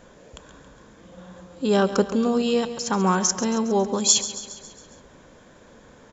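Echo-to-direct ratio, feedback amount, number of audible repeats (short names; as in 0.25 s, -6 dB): -11.5 dB, 57%, 5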